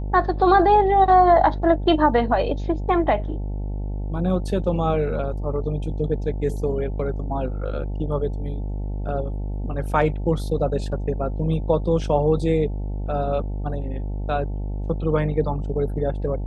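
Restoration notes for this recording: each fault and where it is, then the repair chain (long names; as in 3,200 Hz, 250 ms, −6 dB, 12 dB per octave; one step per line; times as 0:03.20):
mains buzz 50 Hz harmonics 18 −27 dBFS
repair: hum removal 50 Hz, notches 18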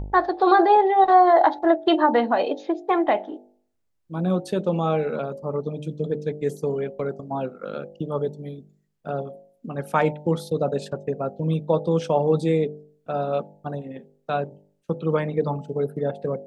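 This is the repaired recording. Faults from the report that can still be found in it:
none of them is left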